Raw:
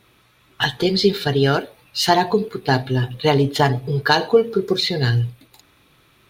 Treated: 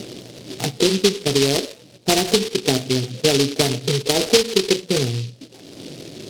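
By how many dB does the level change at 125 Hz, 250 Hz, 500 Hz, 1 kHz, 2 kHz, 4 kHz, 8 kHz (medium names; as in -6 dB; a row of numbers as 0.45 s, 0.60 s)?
-4.5 dB, +0.5 dB, 0.0 dB, -8.5 dB, -4.5 dB, +2.5 dB, +11.5 dB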